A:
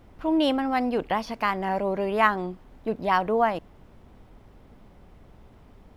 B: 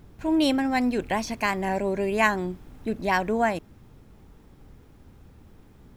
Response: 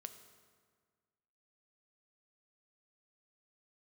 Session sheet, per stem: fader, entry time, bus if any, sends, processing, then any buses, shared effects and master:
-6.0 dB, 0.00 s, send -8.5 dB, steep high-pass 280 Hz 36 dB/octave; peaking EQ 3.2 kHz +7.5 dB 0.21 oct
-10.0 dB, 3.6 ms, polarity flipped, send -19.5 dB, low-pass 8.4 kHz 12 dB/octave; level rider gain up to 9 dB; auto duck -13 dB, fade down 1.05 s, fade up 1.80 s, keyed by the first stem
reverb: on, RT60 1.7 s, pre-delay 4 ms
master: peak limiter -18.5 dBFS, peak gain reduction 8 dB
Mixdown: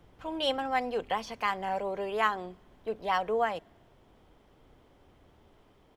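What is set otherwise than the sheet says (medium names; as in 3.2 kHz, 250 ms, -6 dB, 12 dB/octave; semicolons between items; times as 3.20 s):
stem A: send off; master: missing peak limiter -18.5 dBFS, peak gain reduction 8 dB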